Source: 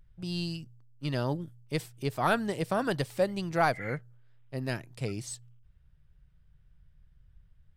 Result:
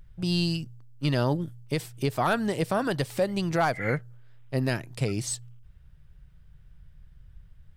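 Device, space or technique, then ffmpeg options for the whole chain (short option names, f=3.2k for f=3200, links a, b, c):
clipper into limiter: -af "asoftclip=type=hard:threshold=-17dB,alimiter=level_in=0.5dB:limit=-24dB:level=0:latency=1:release=204,volume=-0.5dB,volume=8.5dB"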